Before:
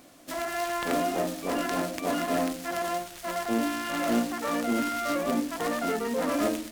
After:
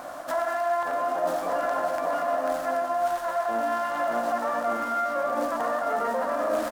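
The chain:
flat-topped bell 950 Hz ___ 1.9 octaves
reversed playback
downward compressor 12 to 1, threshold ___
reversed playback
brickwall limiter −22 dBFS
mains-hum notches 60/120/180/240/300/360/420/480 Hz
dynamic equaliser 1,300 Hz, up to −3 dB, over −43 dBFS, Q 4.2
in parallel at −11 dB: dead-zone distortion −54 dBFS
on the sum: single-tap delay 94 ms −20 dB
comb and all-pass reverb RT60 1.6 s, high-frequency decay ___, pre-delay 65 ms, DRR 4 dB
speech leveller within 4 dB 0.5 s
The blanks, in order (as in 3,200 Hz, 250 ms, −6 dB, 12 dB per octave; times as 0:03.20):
+16 dB, −22 dBFS, 0.85×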